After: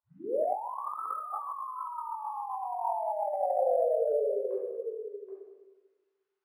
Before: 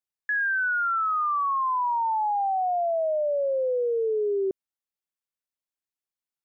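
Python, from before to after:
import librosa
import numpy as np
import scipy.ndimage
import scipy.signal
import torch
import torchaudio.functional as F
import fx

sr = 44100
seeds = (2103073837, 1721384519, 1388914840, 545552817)

y = fx.tape_start_head(x, sr, length_s=0.99)
y = scipy.signal.sosfilt(scipy.signal.butter(4, 940.0, 'highpass', fs=sr, output='sos'), y)
y = fx.tilt_eq(y, sr, slope=-5.5)
y = y + 10.0 ** (-8.5 / 20.0) * np.pad(y, (int(777 * sr / 1000.0), 0))[:len(y)]
y = fx.room_shoebox(y, sr, seeds[0], volume_m3=830.0, walls='mixed', distance_m=4.9)
y = fx.over_compress(y, sr, threshold_db=-29.0, ratio=-1.0)
y = np.interp(np.arange(len(y)), np.arange(len(y))[::4], y[::4])
y = y * 10.0 ** (-4.0 / 20.0)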